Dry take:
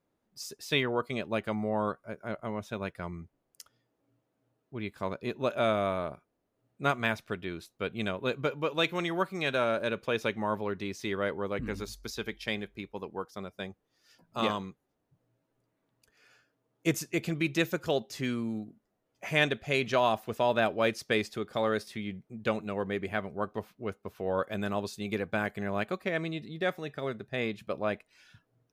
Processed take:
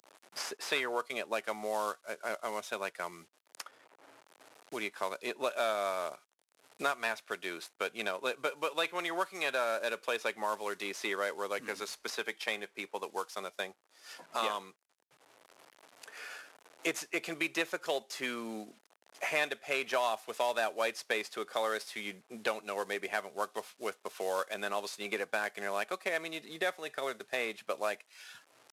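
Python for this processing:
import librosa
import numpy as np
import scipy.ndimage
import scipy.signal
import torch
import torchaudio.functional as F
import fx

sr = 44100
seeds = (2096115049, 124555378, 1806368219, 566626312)

y = fx.cvsd(x, sr, bps=64000)
y = scipy.signal.sosfilt(scipy.signal.butter(2, 570.0, 'highpass', fs=sr, output='sos'), y)
y = fx.band_squash(y, sr, depth_pct=70)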